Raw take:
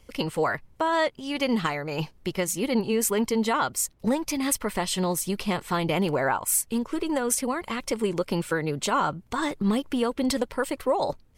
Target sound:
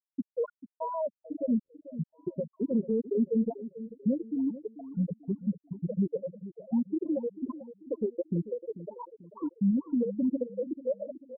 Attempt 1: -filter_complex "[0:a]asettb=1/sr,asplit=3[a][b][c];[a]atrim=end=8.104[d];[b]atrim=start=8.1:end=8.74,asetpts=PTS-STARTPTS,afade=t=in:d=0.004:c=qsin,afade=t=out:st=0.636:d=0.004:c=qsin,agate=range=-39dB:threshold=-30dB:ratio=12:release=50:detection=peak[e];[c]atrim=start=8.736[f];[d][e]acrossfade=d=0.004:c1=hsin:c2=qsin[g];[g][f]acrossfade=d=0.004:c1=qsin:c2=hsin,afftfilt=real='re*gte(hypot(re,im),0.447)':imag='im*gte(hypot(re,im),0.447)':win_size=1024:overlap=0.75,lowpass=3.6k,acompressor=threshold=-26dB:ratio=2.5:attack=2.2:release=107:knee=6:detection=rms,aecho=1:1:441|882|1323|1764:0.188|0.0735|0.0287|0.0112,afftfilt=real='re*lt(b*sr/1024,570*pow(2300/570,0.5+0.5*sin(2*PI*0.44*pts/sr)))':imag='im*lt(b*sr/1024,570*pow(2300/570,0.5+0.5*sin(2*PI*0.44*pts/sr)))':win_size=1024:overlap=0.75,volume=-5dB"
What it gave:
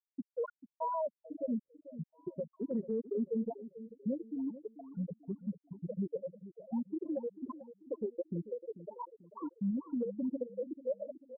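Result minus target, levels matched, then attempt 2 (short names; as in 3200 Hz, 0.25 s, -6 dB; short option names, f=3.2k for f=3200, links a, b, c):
1000 Hz band +6.5 dB
-filter_complex "[0:a]asettb=1/sr,asplit=3[a][b][c];[a]atrim=end=8.104[d];[b]atrim=start=8.1:end=8.74,asetpts=PTS-STARTPTS,afade=t=in:d=0.004:c=qsin,afade=t=out:st=0.636:d=0.004:c=qsin,agate=range=-39dB:threshold=-30dB:ratio=12:release=50:detection=peak[e];[c]atrim=start=8.736[f];[d][e]acrossfade=d=0.004:c1=hsin:c2=qsin[g];[g][f]acrossfade=d=0.004:c1=qsin:c2=hsin,afftfilt=real='re*gte(hypot(re,im),0.447)':imag='im*gte(hypot(re,im),0.447)':win_size=1024:overlap=0.75,lowpass=3.6k,acompressor=threshold=-26dB:ratio=2.5:attack=2.2:release=107:knee=6:detection=rms,tiltshelf=f=1k:g=9,aecho=1:1:441|882|1323|1764:0.188|0.0735|0.0287|0.0112,afftfilt=real='re*lt(b*sr/1024,570*pow(2300/570,0.5+0.5*sin(2*PI*0.44*pts/sr)))':imag='im*lt(b*sr/1024,570*pow(2300/570,0.5+0.5*sin(2*PI*0.44*pts/sr)))':win_size=1024:overlap=0.75,volume=-5dB"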